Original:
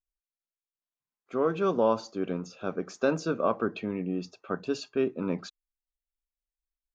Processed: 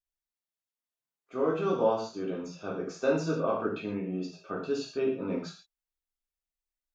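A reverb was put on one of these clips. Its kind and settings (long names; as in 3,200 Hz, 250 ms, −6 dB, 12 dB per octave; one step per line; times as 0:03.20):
reverb whose tail is shaped and stops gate 180 ms falling, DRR −4 dB
level −7 dB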